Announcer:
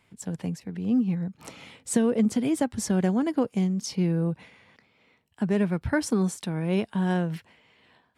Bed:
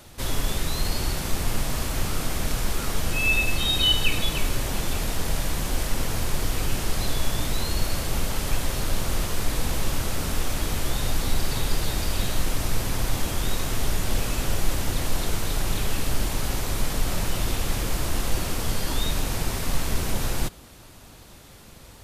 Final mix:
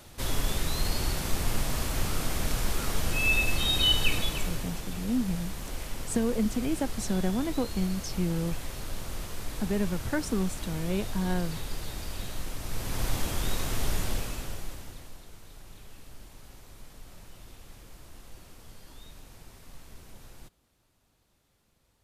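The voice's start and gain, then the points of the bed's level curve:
4.20 s, -5.0 dB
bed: 4.12 s -3 dB
4.84 s -11 dB
12.61 s -11 dB
13.04 s -4 dB
14.01 s -4 dB
15.24 s -23.5 dB

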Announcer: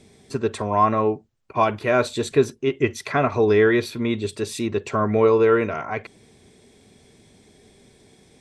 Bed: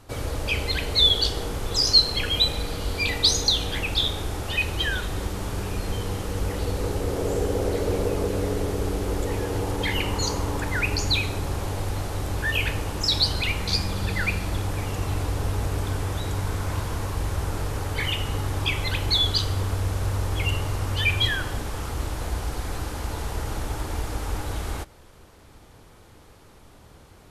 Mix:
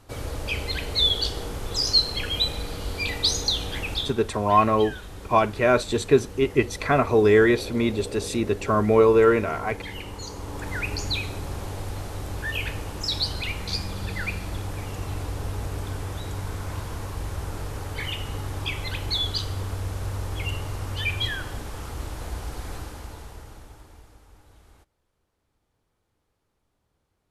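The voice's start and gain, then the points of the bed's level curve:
3.75 s, 0.0 dB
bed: 3.94 s -3 dB
4.17 s -11 dB
10.30 s -11 dB
10.70 s -4.5 dB
22.74 s -4.5 dB
24.28 s -24.5 dB

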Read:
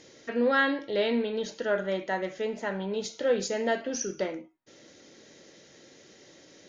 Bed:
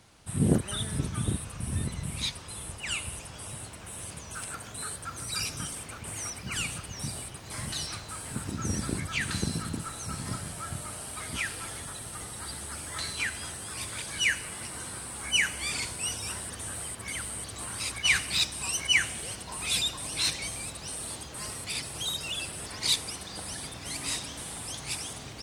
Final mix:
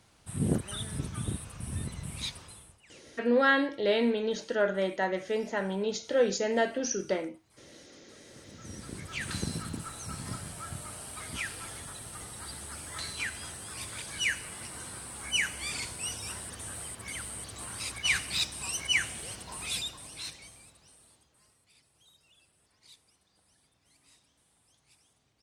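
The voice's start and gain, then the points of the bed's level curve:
2.90 s, +0.5 dB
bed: 2.43 s -4.5 dB
2.91 s -26 dB
8.02 s -26 dB
9.33 s -3.5 dB
19.57 s -3.5 dB
21.60 s -30.5 dB

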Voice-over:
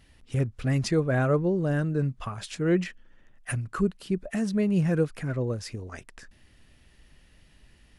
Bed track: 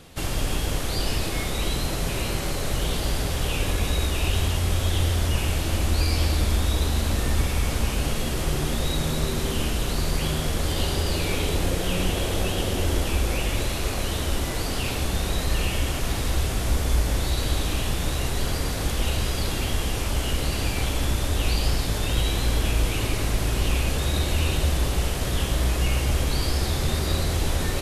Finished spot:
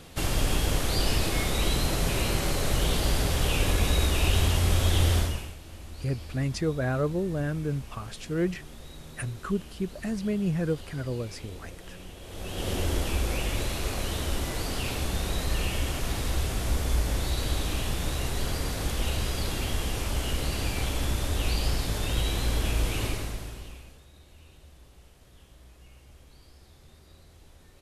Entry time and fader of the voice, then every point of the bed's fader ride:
5.70 s, -3.5 dB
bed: 5.18 s 0 dB
5.57 s -20 dB
12.20 s -20 dB
12.70 s -4 dB
23.07 s -4 dB
24.07 s -30 dB

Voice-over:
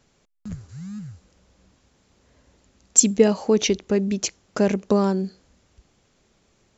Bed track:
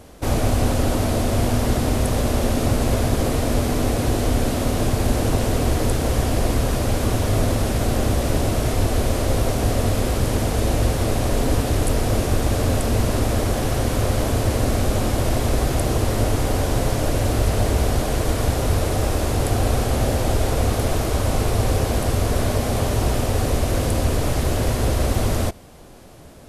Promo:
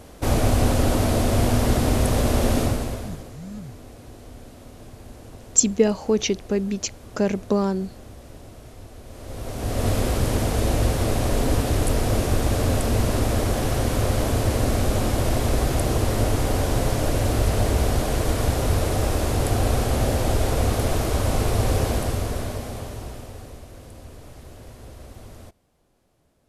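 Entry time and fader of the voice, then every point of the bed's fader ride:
2.60 s, -2.0 dB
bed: 2.59 s 0 dB
3.36 s -22.5 dB
9.03 s -22.5 dB
9.88 s -1.5 dB
21.87 s -1.5 dB
23.70 s -22 dB

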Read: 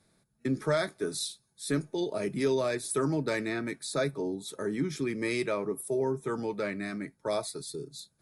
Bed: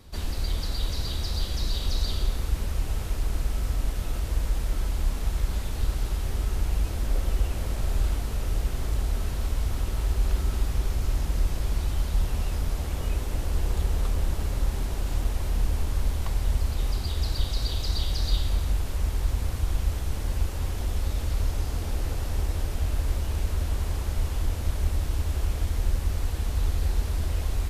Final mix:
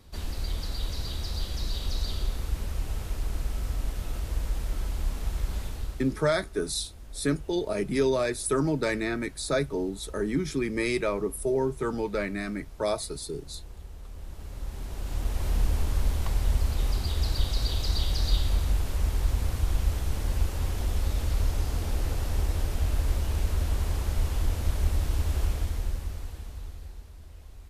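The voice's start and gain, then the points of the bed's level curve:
5.55 s, +3.0 dB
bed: 5.65 s -3.5 dB
6.34 s -18 dB
14.01 s -18 dB
15.49 s 0 dB
25.44 s 0 dB
27.13 s -20 dB

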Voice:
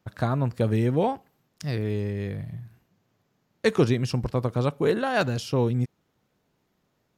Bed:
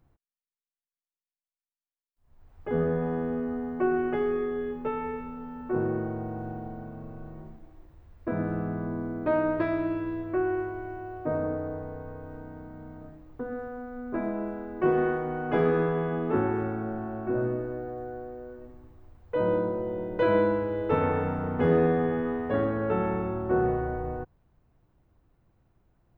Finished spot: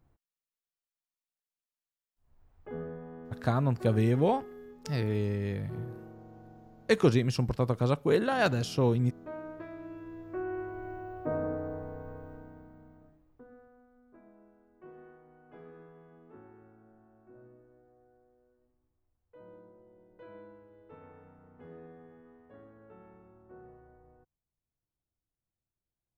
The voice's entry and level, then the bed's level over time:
3.25 s, -2.5 dB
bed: 2.12 s -3 dB
3.05 s -16.5 dB
9.75 s -16.5 dB
10.89 s -3.5 dB
12.16 s -3.5 dB
14.20 s -27.5 dB

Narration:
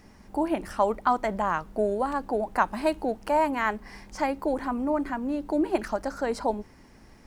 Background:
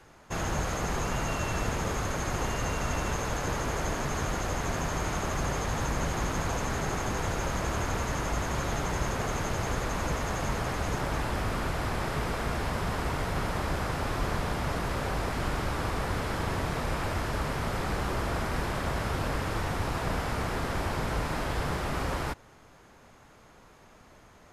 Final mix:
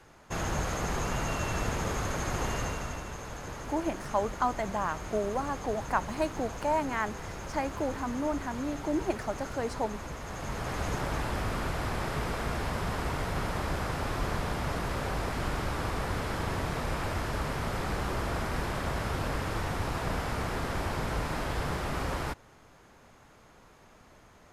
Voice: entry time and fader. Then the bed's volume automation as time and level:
3.35 s, -5.0 dB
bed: 2.58 s -1 dB
3.07 s -9.5 dB
10.19 s -9.5 dB
10.80 s -1.5 dB

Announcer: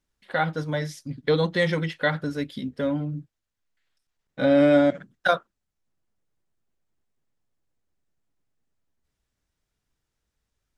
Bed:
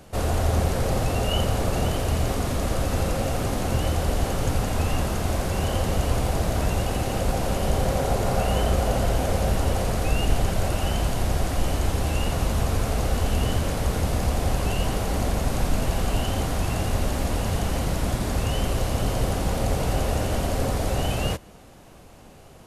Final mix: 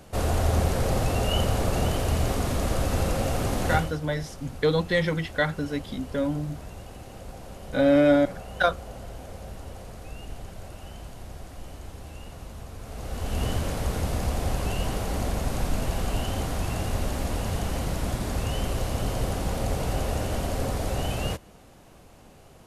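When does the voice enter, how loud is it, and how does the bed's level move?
3.35 s, -1.0 dB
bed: 3.74 s -1 dB
3.98 s -17 dB
12.77 s -17 dB
13.43 s -3.5 dB

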